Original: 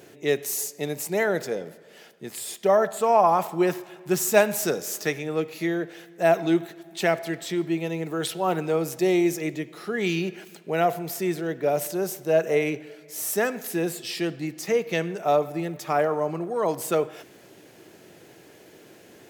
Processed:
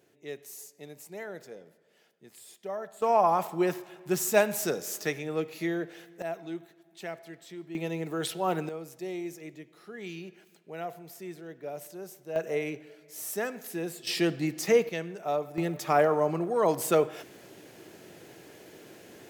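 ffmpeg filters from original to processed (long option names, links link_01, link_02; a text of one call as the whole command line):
ffmpeg -i in.wav -af "asetnsamples=nb_out_samples=441:pad=0,asendcmd='3.02 volume volume -4.5dB;6.22 volume volume -16dB;7.75 volume volume -4dB;8.69 volume volume -15dB;12.36 volume volume -8dB;14.07 volume volume 1dB;14.89 volume volume -8.5dB;15.58 volume volume 0dB',volume=-16.5dB" out.wav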